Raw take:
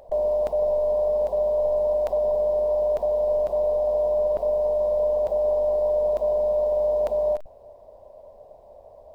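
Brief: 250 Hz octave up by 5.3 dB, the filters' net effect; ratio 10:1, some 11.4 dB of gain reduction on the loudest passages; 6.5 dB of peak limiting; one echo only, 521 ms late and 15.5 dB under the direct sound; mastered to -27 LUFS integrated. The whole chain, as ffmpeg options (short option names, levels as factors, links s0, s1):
-af "equalizer=f=250:t=o:g=7,acompressor=threshold=0.0282:ratio=10,alimiter=level_in=1.78:limit=0.0631:level=0:latency=1,volume=0.562,aecho=1:1:521:0.168,volume=2.37"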